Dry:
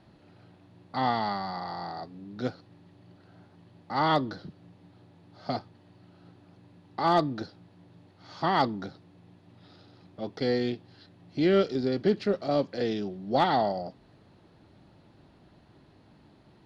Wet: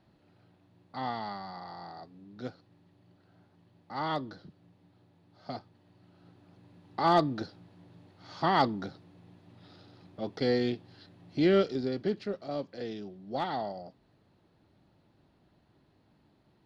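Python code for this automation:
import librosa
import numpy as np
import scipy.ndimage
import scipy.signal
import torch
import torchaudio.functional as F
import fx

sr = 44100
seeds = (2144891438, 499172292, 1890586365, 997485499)

y = fx.gain(x, sr, db=fx.line((5.51, -8.0), (6.99, -0.5), (11.45, -0.5), (12.39, -9.0)))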